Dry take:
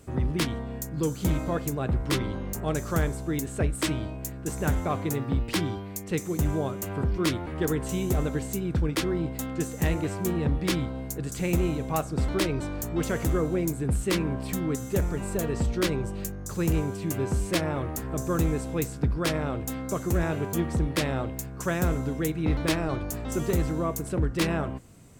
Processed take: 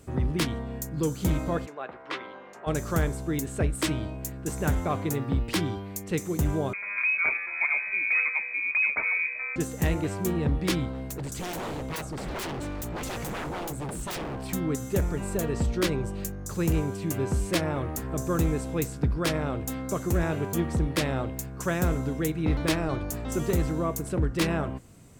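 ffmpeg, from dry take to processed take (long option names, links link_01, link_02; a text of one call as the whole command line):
ffmpeg -i in.wav -filter_complex "[0:a]asplit=3[link_01][link_02][link_03];[link_01]afade=type=out:start_time=1.65:duration=0.02[link_04];[link_02]highpass=670,lowpass=2600,afade=type=in:start_time=1.65:duration=0.02,afade=type=out:start_time=2.66:duration=0.02[link_05];[link_03]afade=type=in:start_time=2.66:duration=0.02[link_06];[link_04][link_05][link_06]amix=inputs=3:normalize=0,asettb=1/sr,asplit=3[link_07][link_08][link_09];[link_07]atrim=end=6.734[link_10];[link_08]atrim=start=6.73:end=9.56,asetpts=PTS-STARTPTS,afade=type=in:duration=0.004:curve=qsin,afade=type=out:start_time=2.826:duration=0.004:curve=qsin,lowpass=frequency=2200:width_type=q:width=0.5098,lowpass=frequency=2200:width_type=q:width=0.6013,lowpass=frequency=2200:width_type=q:width=0.9,lowpass=frequency=2200:width_type=q:width=2.563,afreqshift=-2600[link_11];[link_09]atrim=start=9.556[link_12];[link_10][link_11]acrossfade=duration=0.004:curve1=hsin:curve2=qsin[link_13];[link_13][link_12]acrossfade=duration=0.004:curve1=qsin:curve2=hsin,asettb=1/sr,asplit=3[link_14][link_15][link_16];[link_14]atrim=end=10.934[link_17];[link_15]atrim=start=10.93:end=14.53,asetpts=PTS-STARTPTS,afade=type=in:duration=0.004:curve=qsin,afade=type=out:start_time=3.596:duration=0.004:curve=qsin,aeval=exprs='0.0376*(abs(mod(val(0)/0.0376+3,4)-2)-1)':channel_layout=same[link_18];[link_16]atrim=start=14.526[link_19];[link_17][link_18]acrossfade=duration=0.004:curve1=hsin:curve2=qsin[link_20];[link_20][link_19]acrossfade=duration=0.004:curve1=qsin:curve2=hsin" out.wav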